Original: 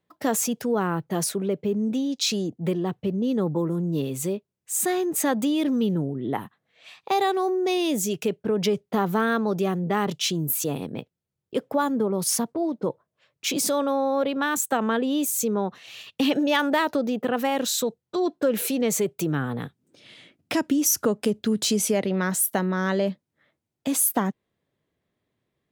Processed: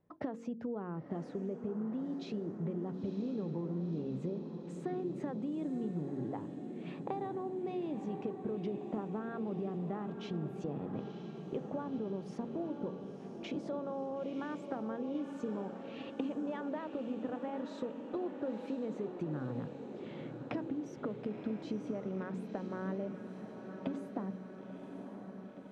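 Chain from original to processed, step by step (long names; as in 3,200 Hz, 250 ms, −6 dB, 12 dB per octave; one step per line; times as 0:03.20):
tilt shelving filter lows +5 dB, about 1,500 Hz
hum removal 46.13 Hz, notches 11
downward compressor 8 to 1, threshold −37 dBFS, peak gain reduction 22 dB
head-to-tape spacing loss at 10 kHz 35 dB
on a send: feedback delay with all-pass diffusion 983 ms, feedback 69%, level −8 dB
on the sum: level +1.5 dB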